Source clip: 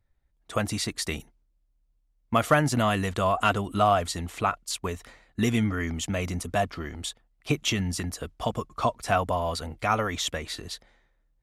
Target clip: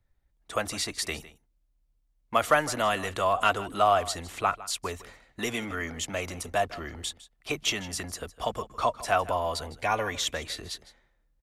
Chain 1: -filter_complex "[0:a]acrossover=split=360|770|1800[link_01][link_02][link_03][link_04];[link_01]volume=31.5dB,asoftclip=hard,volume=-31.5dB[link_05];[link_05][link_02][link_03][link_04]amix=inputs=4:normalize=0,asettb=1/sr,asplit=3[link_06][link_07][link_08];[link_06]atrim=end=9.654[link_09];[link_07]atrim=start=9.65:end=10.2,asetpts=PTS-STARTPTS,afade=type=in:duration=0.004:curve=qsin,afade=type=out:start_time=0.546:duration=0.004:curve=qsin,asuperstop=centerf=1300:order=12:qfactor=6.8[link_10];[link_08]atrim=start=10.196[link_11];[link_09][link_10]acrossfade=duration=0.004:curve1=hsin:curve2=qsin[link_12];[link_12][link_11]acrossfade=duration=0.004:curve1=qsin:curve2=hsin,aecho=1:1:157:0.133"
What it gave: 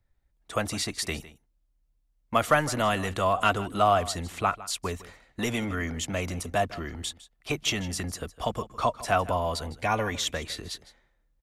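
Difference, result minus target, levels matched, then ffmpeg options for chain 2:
gain into a clipping stage and back: distortion −4 dB
-filter_complex "[0:a]acrossover=split=360|770|1800[link_01][link_02][link_03][link_04];[link_01]volume=40.5dB,asoftclip=hard,volume=-40.5dB[link_05];[link_05][link_02][link_03][link_04]amix=inputs=4:normalize=0,asettb=1/sr,asplit=3[link_06][link_07][link_08];[link_06]atrim=end=9.654[link_09];[link_07]atrim=start=9.65:end=10.2,asetpts=PTS-STARTPTS,afade=type=in:duration=0.004:curve=qsin,afade=type=out:start_time=0.546:duration=0.004:curve=qsin,asuperstop=centerf=1300:order=12:qfactor=6.8[link_10];[link_08]atrim=start=10.196[link_11];[link_09][link_10]acrossfade=duration=0.004:curve1=hsin:curve2=qsin[link_12];[link_12][link_11]acrossfade=duration=0.004:curve1=qsin:curve2=hsin,aecho=1:1:157:0.133"

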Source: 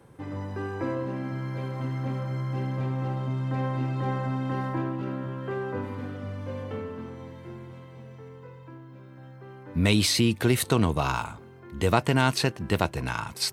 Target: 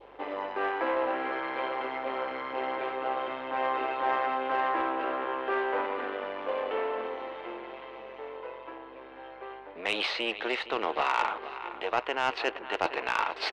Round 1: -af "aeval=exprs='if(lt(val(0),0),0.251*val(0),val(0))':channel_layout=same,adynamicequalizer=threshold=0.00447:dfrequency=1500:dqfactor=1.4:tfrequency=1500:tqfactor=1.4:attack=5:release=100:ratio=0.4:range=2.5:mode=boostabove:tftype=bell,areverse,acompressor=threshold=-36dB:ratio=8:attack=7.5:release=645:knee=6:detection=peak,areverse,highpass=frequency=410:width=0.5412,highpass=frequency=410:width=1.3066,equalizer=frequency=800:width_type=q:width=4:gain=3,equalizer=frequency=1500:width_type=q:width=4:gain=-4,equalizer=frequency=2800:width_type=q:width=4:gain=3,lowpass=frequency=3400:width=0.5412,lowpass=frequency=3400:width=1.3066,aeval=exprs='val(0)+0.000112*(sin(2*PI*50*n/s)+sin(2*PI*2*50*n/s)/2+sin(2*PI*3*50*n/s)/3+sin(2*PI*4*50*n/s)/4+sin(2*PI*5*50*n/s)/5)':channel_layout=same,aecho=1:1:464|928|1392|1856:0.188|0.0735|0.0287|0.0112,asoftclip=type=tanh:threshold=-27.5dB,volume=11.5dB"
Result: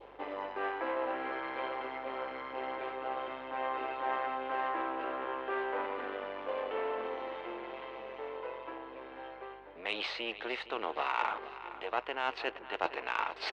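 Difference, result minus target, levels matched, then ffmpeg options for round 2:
downward compressor: peak gain reduction +7 dB
-af "aeval=exprs='if(lt(val(0),0),0.251*val(0),val(0))':channel_layout=same,adynamicequalizer=threshold=0.00447:dfrequency=1500:dqfactor=1.4:tfrequency=1500:tqfactor=1.4:attack=5:release=100:ratio=0.4:range=2.5:mode=boostabove:tftype=bell,areverse,acompressor=threshold=-28dB:ratio=8:attack=7.5:release=645:knee=6:detection=peak,areverse,highpass=frequency=410:width=0.5412,highpass=frequency=410:width=1.3066,equalizer=frequency=800:width_type=q:width=4:gain=3,equalizer=frequency=1500:width_type=q:width=4:gain=-4,equalizer=frequency=2800:width_type=q:width=4:gain=3,lowpass=frequency=3400:width=0.5412,lowpass=frequency=3400:width=1.3066,aeval=exprs='val(0)+0.000112*(sin(2*PI*50*n/s)+sin(2*PI*2*50*n/s)/2+sin(2*PI*3*50*n/s)/3+sin(2*PI*4*50*n/s)/4+sin(2*PI*5*50*n/s)/5)':channel_layout=same,aecho=1:1:464|928|1392|1856:0.188|0.0735|0.0287|0.0112,asoftclip=type=tanh:threshold=-27.5dB,volume=11.5dB"

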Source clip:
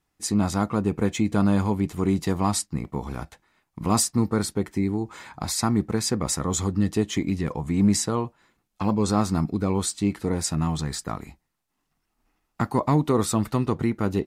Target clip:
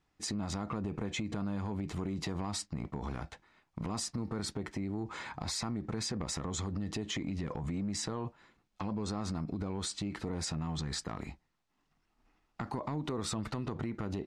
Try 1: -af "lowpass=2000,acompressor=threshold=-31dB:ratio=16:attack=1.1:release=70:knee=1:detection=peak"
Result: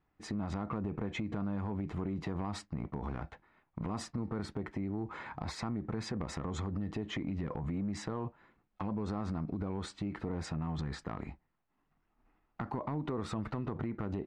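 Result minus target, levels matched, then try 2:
4,000 Hz band −7.5 dB
-af "lowpass=5600,acompressor=threshold=-31dB:ratio=16:attack=1.1:release=70:knee=1:detection=peak"

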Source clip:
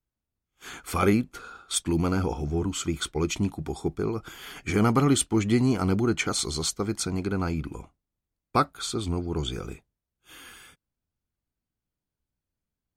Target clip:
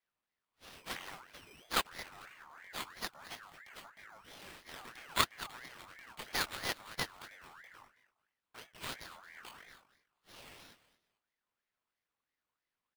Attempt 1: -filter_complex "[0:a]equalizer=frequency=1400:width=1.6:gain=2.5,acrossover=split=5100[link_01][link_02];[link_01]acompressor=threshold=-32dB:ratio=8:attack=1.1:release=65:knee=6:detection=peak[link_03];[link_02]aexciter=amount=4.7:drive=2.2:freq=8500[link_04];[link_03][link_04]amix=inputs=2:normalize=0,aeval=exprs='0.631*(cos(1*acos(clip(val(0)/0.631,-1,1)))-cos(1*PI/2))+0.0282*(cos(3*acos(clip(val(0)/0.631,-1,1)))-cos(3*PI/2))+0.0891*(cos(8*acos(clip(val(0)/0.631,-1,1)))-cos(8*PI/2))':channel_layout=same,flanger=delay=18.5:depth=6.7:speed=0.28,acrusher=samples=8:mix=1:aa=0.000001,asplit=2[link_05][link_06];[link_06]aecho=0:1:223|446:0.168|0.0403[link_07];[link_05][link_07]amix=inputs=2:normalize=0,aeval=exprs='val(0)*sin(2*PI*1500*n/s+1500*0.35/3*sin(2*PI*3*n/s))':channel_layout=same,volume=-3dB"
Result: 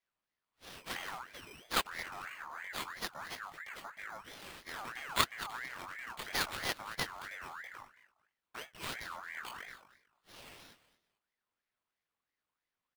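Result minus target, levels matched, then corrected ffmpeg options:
downward compressor: peak gain reduction −9 dB
-filter_complex "[0:a]equalizer=frequency=1400:width=1.6:gain=2.5,acrossover=split=5100[link_01][link_02];[link_01]acompressor=threshold=-42.5dB:ratio=8:attack=1.1:release=65:knee=6:detection=peak[link_03];[link_02]aexciter=amount=4.7:drive=2.2:freq=8500[link_04];[link_03][link_04]amix=inputs=2:normalize=0,aeval=exprs='0.631*(cos(1*acos(clip(val(0)/0.631,-1,1)))-cos(1*PI/2))+0.0282*(cos(3*acos(clip(val(0)/0.631,-1,1)))-cos(3*PI/2))+0.0891*(cos(8*acos(clip(val(0)/0.631,-1,1)))-cos(8*PI/2))':channel_layout=same,flanger=delay=18.5:depth=6.7:speed=0.28,acrusher=samples=8:mix=1:aa=0.000001,asplit=2[link_05][link_06];[link_06]aecho=0:1:223|446:0.168|0.0403[link_07];[link_05][link_07]amix=inputs=2:normalize=0,aeval=exprs='val(0)*sin(2*PI*1500*n/s+1500*0.35/3*sin(2*PI*3*n/s))':channel_layout=same,volume=-3dB"

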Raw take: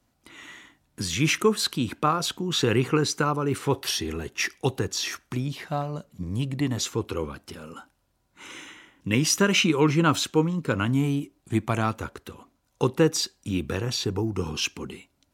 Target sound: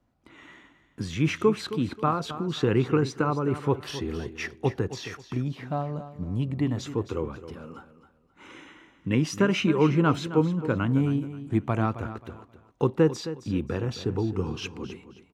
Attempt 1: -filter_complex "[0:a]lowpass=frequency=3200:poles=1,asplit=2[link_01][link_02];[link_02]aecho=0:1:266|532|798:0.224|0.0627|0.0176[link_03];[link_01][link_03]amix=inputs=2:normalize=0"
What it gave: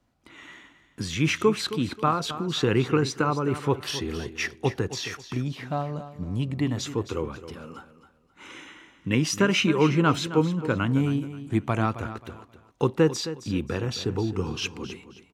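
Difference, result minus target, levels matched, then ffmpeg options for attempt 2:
4,000 Hz band +5.5 dB
-filter_complex "[0:a]lowpass=frequency=1200:poles=1,asplit=2[link_01][link_02];[link_02]aecho=0:1:266|532|798:0.224|0.0627|0.0176[link_03];[link_01][link_03]amix=inputs=2:normalize=0"

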